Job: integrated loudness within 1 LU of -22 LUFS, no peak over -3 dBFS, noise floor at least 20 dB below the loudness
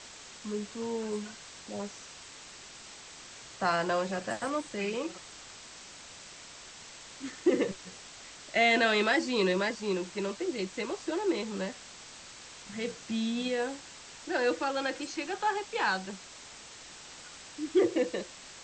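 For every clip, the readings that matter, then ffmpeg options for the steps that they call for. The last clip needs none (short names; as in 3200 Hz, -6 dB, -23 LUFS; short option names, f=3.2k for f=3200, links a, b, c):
noise floor -49 dBFS; noise floor target -52 dBFS; loudness -31.5 LUFS; peak -14.5 dBFS; loudness target -22.0 LUFS
-> -af "afftdn=nr=6:nf=-49"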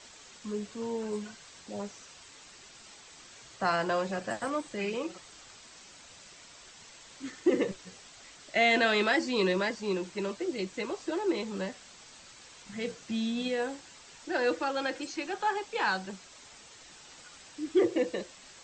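noise floor -53 dBFS; loudness -31.5 LUFS; peak -14.5 dBFS; loudness target -22.0 LUFS
-> -af "volume=9.5dB"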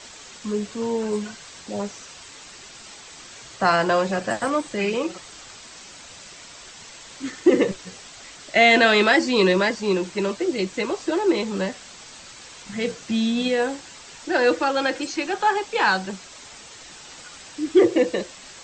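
loudness -22.0 LUFS; peak -5.0 dBFS; noise floor -43 dBFS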